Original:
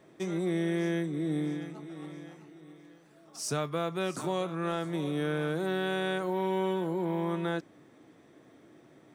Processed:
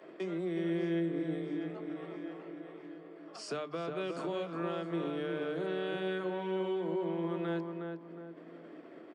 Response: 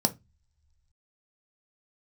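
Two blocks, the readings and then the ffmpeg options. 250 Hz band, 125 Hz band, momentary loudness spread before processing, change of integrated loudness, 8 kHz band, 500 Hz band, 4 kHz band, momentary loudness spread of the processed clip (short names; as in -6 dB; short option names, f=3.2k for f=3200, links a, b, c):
-3.5 dB, -7.0 dB, 13 LU, -4.5 dB, -14.5 dB, -2.5 dB, -6.0 dB, 15 LU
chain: -filter_complex "[0:a]agate=range=-33dB:threshold=-50dB:ratio=3:detection=peak,acrossover=split=210|3000[a][b][c];[b]acompressor=threshold=-38dB:ratio=6[d];[a][d][c]amix=inputs=3:normalize=0,aresample=22050,aresample=44100,acrossover=split=280 4400:gain=0.158 1 0.0794[e][f][g];[e][f][g]amix=inputs=3:normalize=0,bandreject=f=6k:w=6.3,asplit=2[h][i];[i]adelay=362,lowpass=f=1.5k:p=1,volume=-3.5dB,asplit=2[j][k];[k]adelay=362,lowpass=f=1.5k:p=1,volume=0.25,asplit=2[l][m];[m]adelay=362,lowpass=f=1.5k:p=1,volume=0.25,asplit=2[n][o];[o]adelay=362,lowpass=f=1.5k:p=1,volume=0.25[p];[h][j][l][n][p]amix=inputs=5:normalize=0,acompressor=mode=upward:threshold=-42dB:ratio=2.5,highpass=110,equalizer=f=330:w=6.1:g=2.5,bandreject=f=50:t=h:w=6,bandreject=f=100:t=h:w=6,bandreject=f=150:t=h:w=6,bandreject=f=200:t=h:w=6,bandreject=f=250:t=h:w=6,bandreject=f=300:t=h:w=6,asplit=2[q][r];[1:a]atrim=start_sample=2205,asetrate=33957,aresample=44100[s];[r][s]afir=irnorm=-1:irlink=0,volume=-20.5dB[t];[q][t]amix=inputs=2:normalize=0"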